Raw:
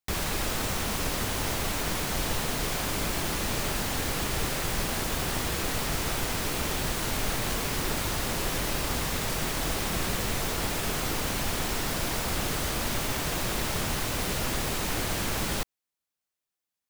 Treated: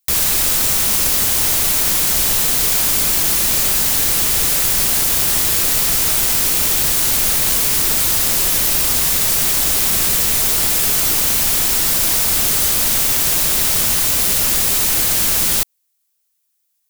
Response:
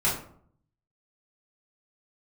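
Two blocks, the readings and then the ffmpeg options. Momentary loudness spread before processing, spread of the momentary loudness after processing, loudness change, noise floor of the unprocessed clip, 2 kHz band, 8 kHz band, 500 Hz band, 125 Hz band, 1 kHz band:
0 LU, 0 LU, +16.5 dB, below −85 dBFS, +8.0 dB, +17.5 dB, +3.5 dB, +3.0 dB, +5.0 dB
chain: -af "crystalizer=i=4.5:c=0,volume=3dB"

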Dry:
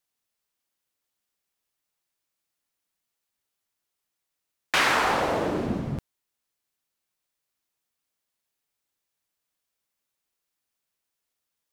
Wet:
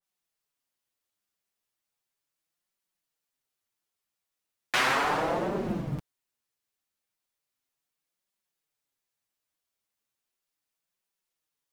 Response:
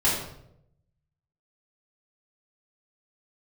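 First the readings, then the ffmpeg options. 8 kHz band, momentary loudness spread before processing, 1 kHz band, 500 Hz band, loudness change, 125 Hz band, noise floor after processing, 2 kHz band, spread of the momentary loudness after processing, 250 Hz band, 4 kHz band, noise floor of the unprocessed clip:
−4.5 dB, 12 LU, −3.0 dB, −3.0 dB, −3.5 dB, −2.0 dB, below −85 dBFS, −3.5 dB, 11 LU, −3.0 dB, −4.0 dB, −83 dBFS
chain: -af "acrusher=bits=9:mode=log:mix=0:aa=0.000001,flanger=delay=5:depth=5.5:regen=-2:speed=0.36:shape=triangular,adynamicequalizer=threshold=0.0112:dfrequency=2100:dqfactor=0.7:tfrequency=2100:tqfactor=0.7:attack=5:release=100:ratio=0.375:range=2.5:mode=cutabove:tftype=highshelf"

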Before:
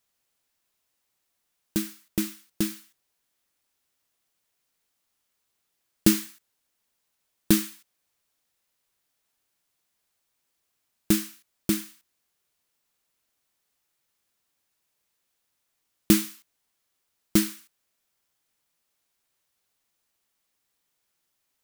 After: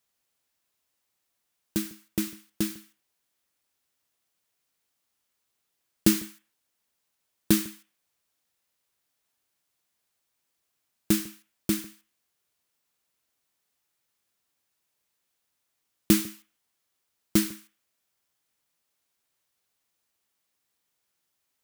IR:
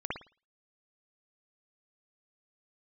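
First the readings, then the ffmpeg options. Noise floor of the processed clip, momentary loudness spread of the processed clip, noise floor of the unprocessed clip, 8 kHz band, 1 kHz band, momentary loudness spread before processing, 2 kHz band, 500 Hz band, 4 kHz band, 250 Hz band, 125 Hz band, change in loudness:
−79 dBFS, 16 LU, −78 dBFS, −1.5 dB, −1.5 dB, 16 LU, −1.5 dB, −1.5 dB, −1.5 dB, −1.5 dB, −1.5 dB, −1.5 dB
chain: -filter_complex "[0:a]highpass=41,asplit=2[link_01][link_02];[1:a]atrim=start_sample=2205,atrim=end_sample=3969,adelay=97[link_03];[link_02][link_03]afir=irnorm=-1:irlink=0,volume=-24.5dB[link_04];[link_01][link_04]amix=inputs=2:normalize=0,volume=-1.5dB"

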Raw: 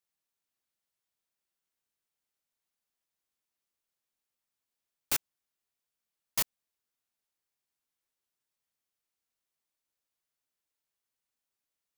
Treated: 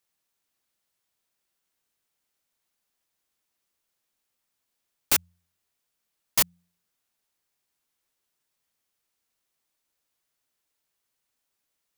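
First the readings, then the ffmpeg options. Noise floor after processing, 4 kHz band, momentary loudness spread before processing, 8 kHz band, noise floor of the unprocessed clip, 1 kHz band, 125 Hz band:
−81 dBFS, +8.0 dB, 3 LU, +8.0 dB, below −85 dBFS, +8.0 dB, +7.5 dB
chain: -af "bandreject=frequency=87.28:width_type=h:width=4,bandreject=frequency=174.56:width_type=h:width=4,volume=8dB"

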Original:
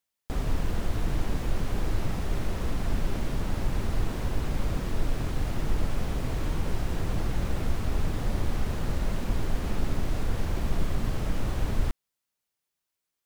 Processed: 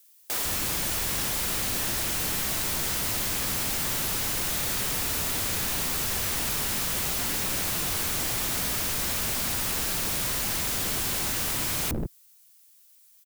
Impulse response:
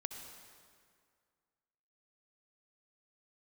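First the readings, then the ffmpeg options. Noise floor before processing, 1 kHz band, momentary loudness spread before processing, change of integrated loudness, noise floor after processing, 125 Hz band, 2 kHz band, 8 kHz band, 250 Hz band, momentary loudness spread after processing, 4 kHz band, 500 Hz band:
−85 dBFS, +3.5 dB, 1 LU, +6.5 dB, −57 dBFS, −7.0 dB, +8.5 dB, +20.0 dB, −3.0 dB, 0 LU, +14.0 dB, −1.0 dB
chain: -filter_complex "[0:a]equalizer=frequency=110:width=1:gain=3.5,acrossover=split=560|2800[link_01][link_02][link_03];[link_03]aeval=exprs='(mod(211*val(0)+1,2)-1)/211':channel_layout=same[link_04];[link_01][link_02][link_04]amix=inputs=3:normalize=0,acrossover=split=370[link_05][link_06];[link_05]adelay=150[link_07];[link_07][link_06]amix=inputs=2:normalize=0,crystalizer=i=9:c=0,aeval=exprs='0.0376*(abs(mod(val(0)/0.0376+3,4)-2)-1)':channel_layout=same,volume=5dB"

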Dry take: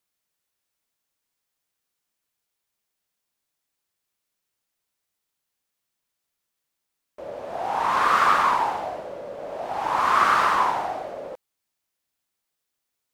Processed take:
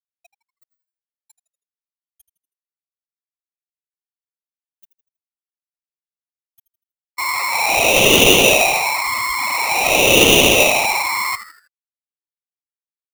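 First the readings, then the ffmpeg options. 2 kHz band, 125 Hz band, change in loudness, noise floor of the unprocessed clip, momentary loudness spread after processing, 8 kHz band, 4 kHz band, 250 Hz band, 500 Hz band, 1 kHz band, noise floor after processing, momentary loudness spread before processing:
+13.0 dB, +18.0 dB, +8.5 dB, −82 dBFS, 11 LU, +26.0 dB, +21.5 dB, +17.5 dB, +14.0 dB, +0.5 dB, below −85 dBFS, 18 LU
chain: -filter_complex "[0:a]aeval=exprs='val(0)+0.5*0.0794*sgn(val(0))':channel_layout=same,equalizer=frequency=67:width=0.46:gain=-5,afftfilt=real='re*gte(hypot(re,im),0.0891)':imag='im*gte(hypot(re,im),0.0891)':win_size=1024:overlap=0.75,asplit=5[link_01][link_02][link_03][link_04][link_05];[link_02]adelay=80,afreqshift=-110,volume=-13.5dB[link_06];[link_03]adelay=160,afreqshift=-220,volume=-21.2dB[link_07];[link_04]adelay=240,afreqshift=-330,volume=-29dB[link_08];[link_05]adelay=320,afreqshift=-440,volume=-36.7dB[link_09];[link_01][link_06][link_07][link_08][link_09]amix=inputs=5:normalize=0,adynamicequalizer=threshold=0.00355:dfrequency=6900:dqfactor=1.6:tfrequency=6900:tqfactor=1.6:attack=5:release=100:ratio=0.375:range=2:mode=boostabove:tftype=bell,aeval=exprs='val(0)*sgn(sin(2*PI*1600*n/s))':channel_layout=same,volume=5.5dB"

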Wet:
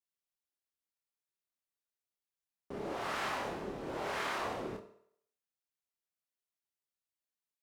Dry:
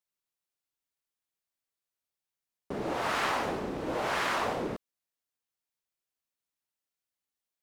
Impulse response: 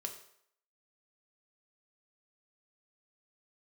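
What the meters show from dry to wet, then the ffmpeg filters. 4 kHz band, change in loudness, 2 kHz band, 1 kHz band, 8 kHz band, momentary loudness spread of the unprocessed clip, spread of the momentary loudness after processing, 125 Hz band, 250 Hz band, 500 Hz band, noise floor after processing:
−6.5 dB, −6.5 dB, −6.5 dB, −7.0 dB, −6.5 dB, 9 LU, 8 LU, −7.0 dB, −7.0 dB, −6.0 dB, below −85 dBFS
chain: -filter_complex "[0:a]asplit=2[link_01][link_02];[1:a]atrim=start_sample=2205,adelay=27[link_03];[link_02][link_03]afir=irnorm=-1:irlink=0,volume=-1dB[link_04];[link_01][link_04]amix=inputs=2:normalize=0,volume=-8.5dB"

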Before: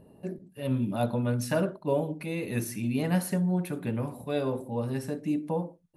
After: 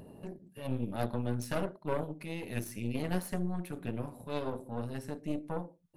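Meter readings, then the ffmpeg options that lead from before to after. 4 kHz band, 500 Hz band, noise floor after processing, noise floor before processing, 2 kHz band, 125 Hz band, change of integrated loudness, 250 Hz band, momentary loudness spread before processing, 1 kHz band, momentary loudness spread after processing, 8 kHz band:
−4.5 dB, −7.0 dB, −62 dBFS, −58 dBFS, −5.5 dB, −7.0 dB, −7.0 dB, −7.5 dB, 6 LU, −4.5 dB, 6 LU, −7.5 dB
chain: -af "acompressor=mode=upward:threshold=-32dB:ratio=2.5,aeval=exprs='0.178*(cos(1*acos(clip(val(0)/0.178,-1,1)))-cos(1*PI/2))+0.0501*(cos(4*acos(clip(val(0)/0.178,-1,1)))-cos(4*PI/2))':channel_layout=same,volume=-8dB"

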